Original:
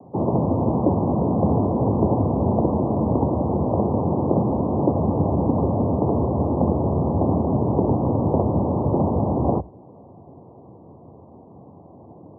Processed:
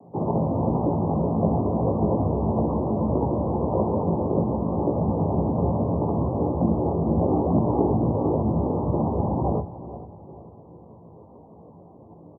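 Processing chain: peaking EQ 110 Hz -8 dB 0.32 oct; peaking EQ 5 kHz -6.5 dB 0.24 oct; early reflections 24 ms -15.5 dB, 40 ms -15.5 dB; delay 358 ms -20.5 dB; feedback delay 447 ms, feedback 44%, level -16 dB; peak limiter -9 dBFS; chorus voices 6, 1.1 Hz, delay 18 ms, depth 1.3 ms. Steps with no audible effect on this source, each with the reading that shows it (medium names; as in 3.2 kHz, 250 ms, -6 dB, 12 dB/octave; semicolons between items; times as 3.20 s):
peaking EQ 5 kHz: input has nothing above 1.1 kHz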